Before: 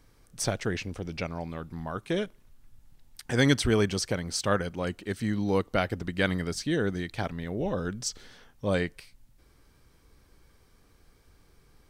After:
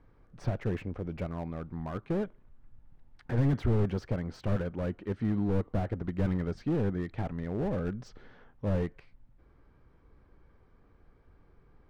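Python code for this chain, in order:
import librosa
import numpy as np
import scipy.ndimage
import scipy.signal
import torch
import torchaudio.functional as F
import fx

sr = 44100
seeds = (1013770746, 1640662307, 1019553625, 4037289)

y = scipy.signal.sosfilt(scipy.signal.butter(2, 1500.0, 'lowpass', fs=sr, output='sos'), x)
y = fx.slew_limit(y, sr, full_power_hz=15.0)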